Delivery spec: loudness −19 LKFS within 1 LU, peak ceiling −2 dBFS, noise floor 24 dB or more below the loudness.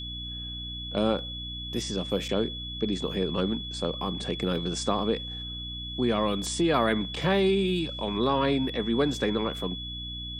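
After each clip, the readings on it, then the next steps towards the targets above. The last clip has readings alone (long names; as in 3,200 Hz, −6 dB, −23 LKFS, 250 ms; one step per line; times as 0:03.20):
mains hum 60 Hz; hum harmonics up to 300 Hz; level of the hum −38 dBFS; interfering tone 3,400 Hz; level of the tone −36 dBFS; integrated loudness −28.5 LKFS; sample peak −10.0 dBFS; target loudness −19.0 LKFS
→ mains-hum notches 60/120/180/240/300 Hz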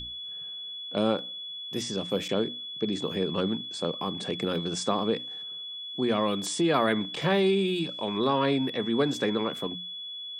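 mains hum none found; interfering tone 3,400 Hz; level of the tone −36 dBFS
→ notch filter 3,400 Hz, Q 30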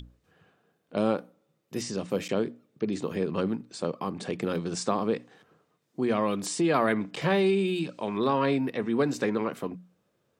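interfering tone none found; integrated loudness −29.0 LKFS; sample peak −10.5 dBFS; target loudness −19.0 LKFS
→ level +10 dB
brickwall limiter −2 dBFS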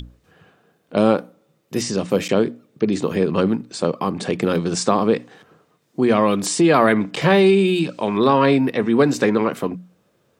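integrated loudness −19.0 LKFS; sample peak −2.0 dBFS; background noise floor −64 dBFS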